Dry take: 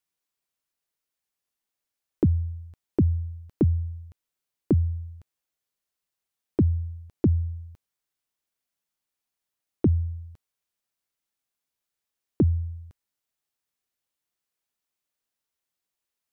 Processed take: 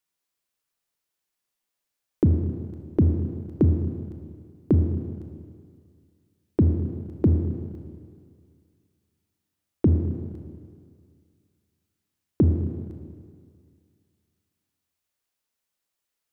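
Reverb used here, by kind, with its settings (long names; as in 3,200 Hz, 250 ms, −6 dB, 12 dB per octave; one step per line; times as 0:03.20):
four-comb reverb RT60 2.1 s, combs from 26 ms, DRR 4 dB
level +1.5 dB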